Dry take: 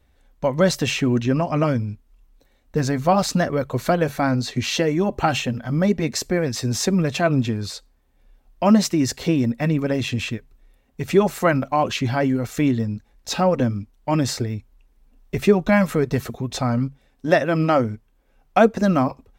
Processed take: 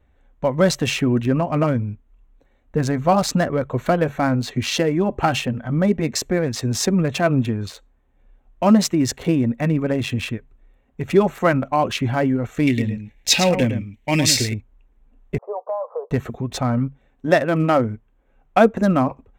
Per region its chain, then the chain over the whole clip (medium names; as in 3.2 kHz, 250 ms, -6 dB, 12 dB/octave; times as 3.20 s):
12.67–14.54 s: resonant high shelf 1.7 kHz +8 dB, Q 3 + delay 109 ms -8.5 dB
15.38–16.11 s: Chebyshev band-pass 470–1100 Hz, order 4 + compression 5:1, threshold -22 dBFS
whole clip: local Wiener filter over 9 samples; treble shelf 6.2 kHz +4 dB; trim +1 dB